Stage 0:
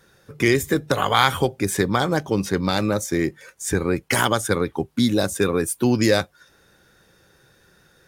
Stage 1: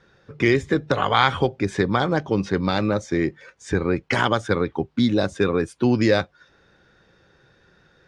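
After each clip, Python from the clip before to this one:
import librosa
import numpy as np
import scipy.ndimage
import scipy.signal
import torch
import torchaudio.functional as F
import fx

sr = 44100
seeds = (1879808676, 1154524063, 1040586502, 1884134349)

y = scipy.signal.sosfilt(scipy.signal.bessel(4, 3800.0, 'lowpass', norm='mag', fs=sr, output='sos'), x)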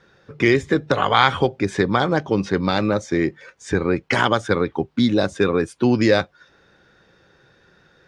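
y = fx.low_shelf(x, sr, hz=100.0, db=-5.5)
y = y * librosa.db_to_amplitude(2.5)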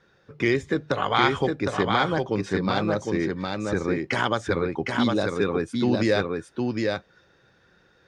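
y = x + 10.0 ** (-3.5 / 20.0) * np.pad(x, (int(759 * sr / 1000.0), 0))[:len(x)]
y = y * librosa.db_to_amplitude(-6.0)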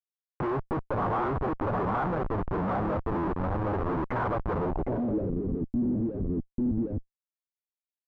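y = fx.schmitt(x, sr, flips_db=-30.0)
y = fx.filter_sweep_lowpass(y, sr, from_hz=1100.0, to_hz=270.0, start_s=4.55, end_s=5.4, q=1.7)
y = y * librosa.db_to_amplitude(-3.5)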